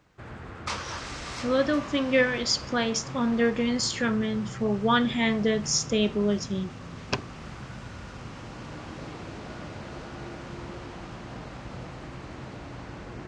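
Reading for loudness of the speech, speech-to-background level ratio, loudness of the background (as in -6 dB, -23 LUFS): -26.0 LUFS, 13.0 dB, -39.0 LUFS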